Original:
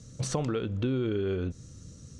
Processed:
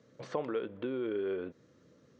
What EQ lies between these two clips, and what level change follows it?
air absorption 230 m; speaker cabinet 480–9200 Hz, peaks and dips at 760 Hz -5 dB, 1300 Hz -5 dB, 2700 Hz -5 dB, 4000 Hz -5 dB, 5700 Hz -7 dB; high shelf 4300 Hz -9.5 dB; +3.0 dB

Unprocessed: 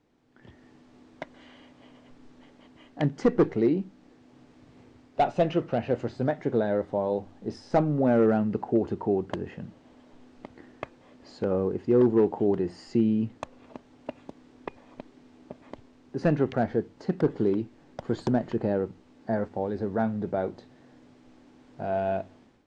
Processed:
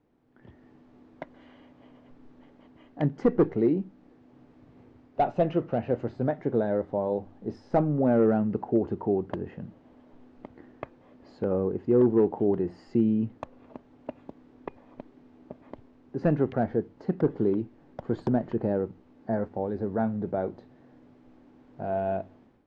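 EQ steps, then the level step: LPF 1300 Hz 6 dB/oct; 0.0 dB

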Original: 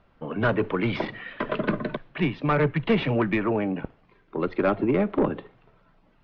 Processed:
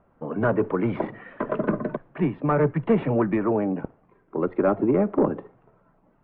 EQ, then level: LPF 1200 Hz 12 dB/oct; air absorption 110 m; low shelf 83 Hz -10.5 dB; +3.0 dB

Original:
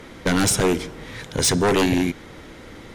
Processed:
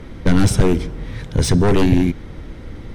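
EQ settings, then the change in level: RIAA curve playback; high shelf 4300 Hz +11 dB; notch 6900 Hz, Q 13; -2.0 dB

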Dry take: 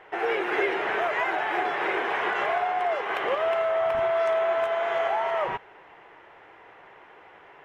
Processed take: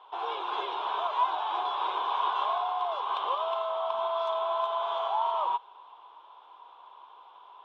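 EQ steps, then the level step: double band-pass 1900 Hz, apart 1.8 oct; +7.5 dB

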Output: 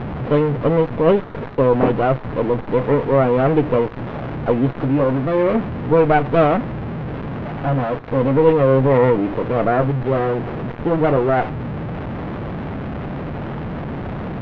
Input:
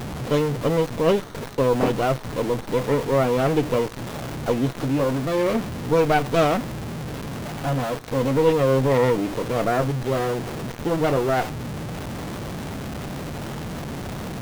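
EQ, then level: Bessel low-pass 1900 Hz, order 4; +5.0 dB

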